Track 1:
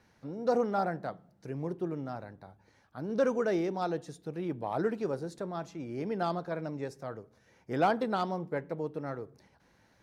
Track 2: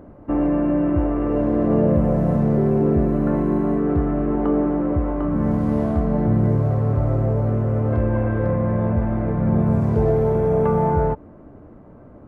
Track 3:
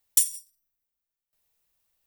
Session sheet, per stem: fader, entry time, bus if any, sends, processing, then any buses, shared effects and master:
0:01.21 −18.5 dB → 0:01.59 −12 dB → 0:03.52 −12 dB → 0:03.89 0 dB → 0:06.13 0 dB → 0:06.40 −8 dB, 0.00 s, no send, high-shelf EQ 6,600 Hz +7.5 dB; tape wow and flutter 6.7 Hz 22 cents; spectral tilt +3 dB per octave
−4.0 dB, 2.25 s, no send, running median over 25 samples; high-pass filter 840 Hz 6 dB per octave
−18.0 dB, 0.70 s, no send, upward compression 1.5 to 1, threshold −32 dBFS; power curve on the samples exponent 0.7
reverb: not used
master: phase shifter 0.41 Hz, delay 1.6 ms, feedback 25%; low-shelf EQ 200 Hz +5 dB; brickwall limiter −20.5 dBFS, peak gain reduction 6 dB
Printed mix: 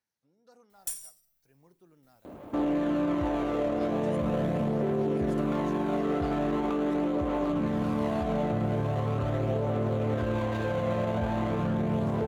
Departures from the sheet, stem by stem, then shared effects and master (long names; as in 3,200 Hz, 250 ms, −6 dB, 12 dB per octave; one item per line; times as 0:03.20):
stem 1 −18.5 dB → −28.5 dB
stem 2 −4.0 dB → +5.0 dB
stem 3: missing upward compression 1.5 to 1, threshold −32 dBFS